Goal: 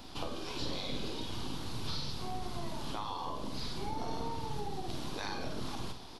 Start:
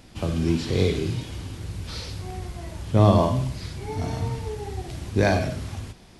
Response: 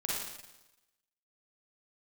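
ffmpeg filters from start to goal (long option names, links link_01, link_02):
-filter_complex "[0:a]afftfilt=real='re*lt(hypot(re,im),0.251)':imag='im*lt(hypot(re,im),0.251)':win_size=1024:overlap=0.75,equalizer=frequency=125:width_type=o:width=1:gain=-11,equalizer=frequency=250:width_type=o:width=1:gain=4,equalizer=frequency=500:width_type=o:width=1:gain=-6,equalizer=frequency=1000:width_type=o:width=1:gain=6,equalizer=frequency=2000:width_type=o:width=1:gain=-9,equalizer=frequency=4000:width_type=o:width=1:gain=6,equalizer=frequency=8000:width_type=o:width=1:gain=-8,acrossover=split=250[link_01][link_02];[link_01]aeval=exprs='abs(val(0))':channel_layout=same[link_03];[link_02]acompressor=threshold=-43dB:ratio=4[link_04];[link_03][link_04]amix=inputs=2:normalize=0,asplit=2[link_05][link_06];[link_06]adelay=50,volume=-9dB[link_07];[link_05][link_07]amix=inputs=2:normalize=0,volume=3dB"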